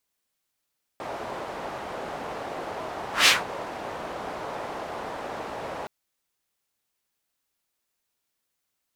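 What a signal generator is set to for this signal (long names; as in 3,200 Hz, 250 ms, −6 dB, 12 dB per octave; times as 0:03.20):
pass-by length 4.87 s, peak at 0:02.27, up 0.16 s, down 0.18 s, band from 720 Hz, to 3,300 Hz, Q 1.3, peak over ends 19 dB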